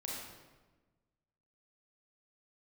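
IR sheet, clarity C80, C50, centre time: 2.0 dB, -1.0 dB, 83 ms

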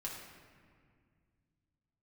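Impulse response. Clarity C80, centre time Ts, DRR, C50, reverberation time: 4.0 dB, 68 ms, -4.0 dB, 2.0 dB, 2.0 s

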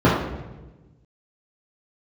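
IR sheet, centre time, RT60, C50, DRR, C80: 58 ms, 1.2 s, 1.5 dB, -9.0 dB, 5.0 dB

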